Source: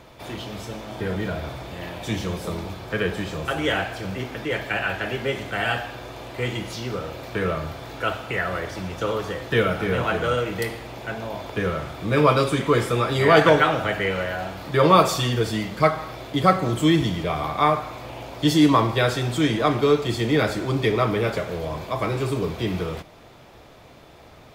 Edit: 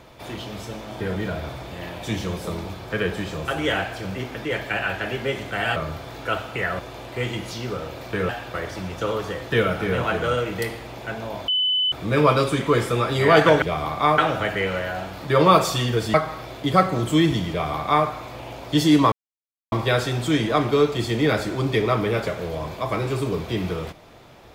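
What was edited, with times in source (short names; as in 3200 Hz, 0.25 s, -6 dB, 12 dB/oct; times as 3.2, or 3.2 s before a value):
5.76–6.01 swap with 7.51–8.54
11.48–11.92 bleep 3010 Hz -18 dBFS
15.58–15.84 cut
17.2–17.76 copy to 13.62
18.82 insert silence 0.60 s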